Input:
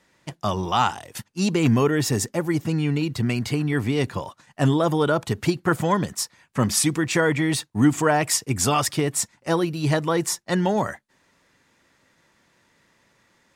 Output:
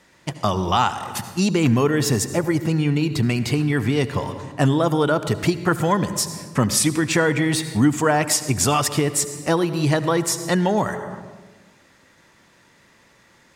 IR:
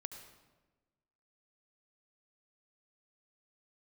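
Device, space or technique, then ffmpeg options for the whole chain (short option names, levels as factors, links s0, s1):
ducked reverb: -filter_complex "[0:a]asplit=3[s0][s1][s2];[1:a]atrim=start_sample=2205[s3];[s1][s3]afir=irnorm=-1:irlink=0[s4];[s2]apad=whole_len=597708[s5];[s4][s5]sidechaincompress=threshold=0.0398:ratio=8:attack=49:release=390,volume=3.16[s6];[s0][s6]amix=inputs=2:normalize=0,volume=0.75"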